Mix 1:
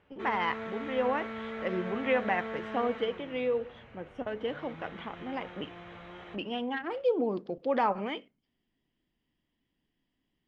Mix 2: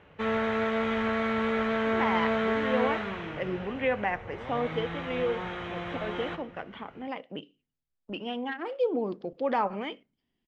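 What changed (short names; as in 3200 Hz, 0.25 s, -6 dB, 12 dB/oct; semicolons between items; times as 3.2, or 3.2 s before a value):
speech: entry +1.75 s; background +11.0 dB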